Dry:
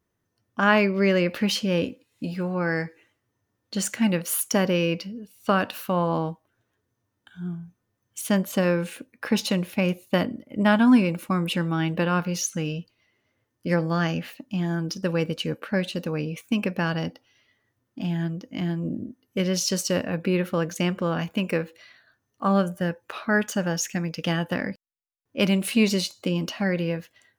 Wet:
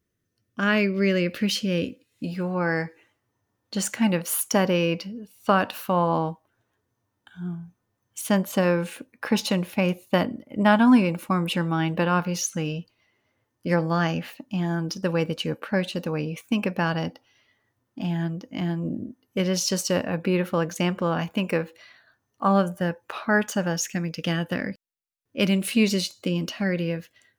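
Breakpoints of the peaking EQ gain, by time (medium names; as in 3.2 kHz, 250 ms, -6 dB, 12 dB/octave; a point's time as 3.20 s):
peaking EQ 880 Hz 0.82 oct
1.89 s -12.5 dB
2.32 s -2 dB
2.64 s +4.5 dB
23.50 s +4.5 dB
24.07 s -5 dB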